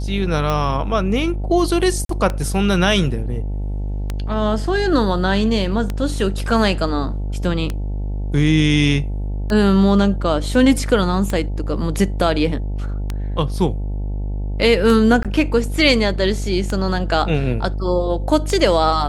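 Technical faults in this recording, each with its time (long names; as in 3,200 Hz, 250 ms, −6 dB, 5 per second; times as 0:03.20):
mains buzz 50 Hz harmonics 18 −23 dBFS
scratch tick 33 1/3 rpm −9 dBFS
0:02.05–0:02.09: drop-out 43 ms
0:15.23–0:15.25: drop-out 17 ms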